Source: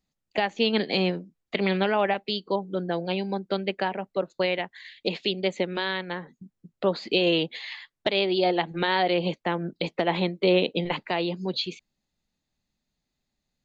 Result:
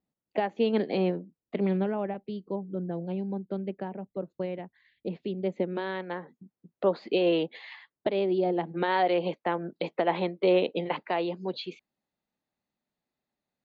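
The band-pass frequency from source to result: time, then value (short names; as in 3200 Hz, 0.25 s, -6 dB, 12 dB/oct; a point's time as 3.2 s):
band-pass, Q 0.55
1.17 s 380 Hz
2.07 s 120 Hz
5.21 s 120 Hz
6.11 s 560 Hz
7.75 s 560 Hz
8.5 s 180 Hz
8.95 s 700 Hz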